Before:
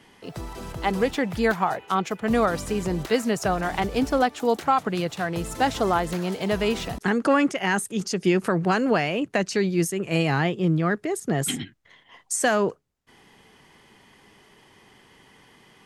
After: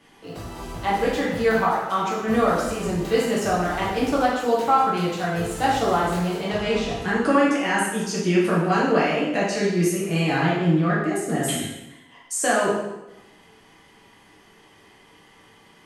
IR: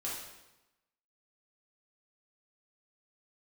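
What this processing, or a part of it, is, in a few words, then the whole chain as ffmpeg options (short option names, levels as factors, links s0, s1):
bathroom: -filter_complex "[0:a]asettb=1/sr,asplit=3[s0][s1][s2];[s0]atrim=end=6.374[s3];[s1]atrim=start=6.37:end=6.98,asetpts=PTS-STARTPTS,afade=t=in:d=0.004:c=qsin,afade=t=out:st=0.606:d=0.004:c=qsin,lowpass=7100[s4];[s2]atrim=start=6.976[s5];[s3][s4]acrossfade=d=0.004:c1=hsin:c2=qsin[s6];[s6][s5]acrossfade=d=0.004:c1=qsin:c2=hsin[s7];[1:a]atrim=start_sample=2205[s8];[s7][s8]afir=irnorm=-1:irlink=0"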